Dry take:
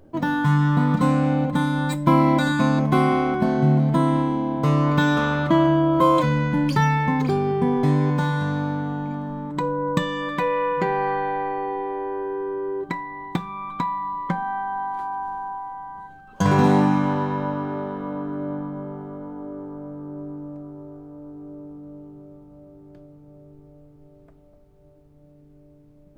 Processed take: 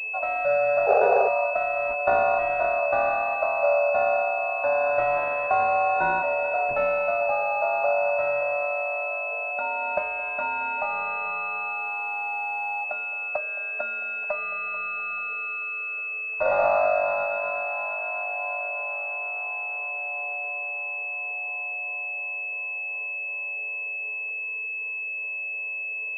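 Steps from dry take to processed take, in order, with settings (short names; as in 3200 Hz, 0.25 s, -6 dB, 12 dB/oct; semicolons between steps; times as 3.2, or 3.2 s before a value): frequency shift +430 Hz; on a send: split-band echo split 710 Hz, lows 0.218 s, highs 0.438 s, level -14.5 dB; on the sum: painted sound noise, 0.86–1.29, 380–840 Hz -16 dBFS; pulse-width modulation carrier 2600 Hz; gain -4 dB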